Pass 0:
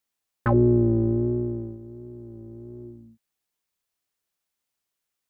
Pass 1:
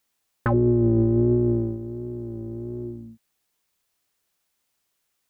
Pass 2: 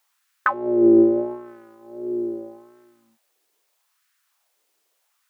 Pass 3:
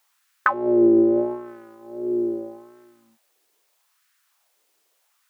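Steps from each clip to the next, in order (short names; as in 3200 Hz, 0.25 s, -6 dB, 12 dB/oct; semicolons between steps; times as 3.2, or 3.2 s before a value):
limiter -20.5 dBFS, peak gain reduction 10.5 dB; gain +8 dB
LFO high-pass sine 0.79 Hz 370–1500 Hz; gain +4 dB
compressor, threshold -15 dBFS, peak gain reduction 5.5 dB; gain +2.5 dB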